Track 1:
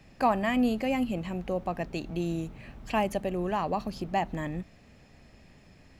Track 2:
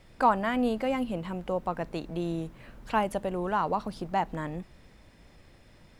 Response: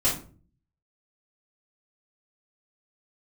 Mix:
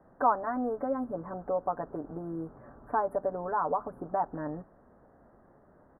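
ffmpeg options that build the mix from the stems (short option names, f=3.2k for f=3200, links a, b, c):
-filter_complex "[0:a]highpass=55,highshelf=f=2.1k:g=-9.5,volume=2.5dB[a];[1:a]lowpass=7.7k,adelay=7.6,volume=-2dB,asplit=2[b][c];[c]apad=whole_len=264322[d];[a][d]sidechaincompress=threshold=-32dB:ratio=8:attack=16:release=194[e];[e][b]amix=inputs=2:normalize=0,asuperstop=centerf=4100:order=12:qfactor=0.5,bass=f=250:g=-13,treble=f=4k:g=-13"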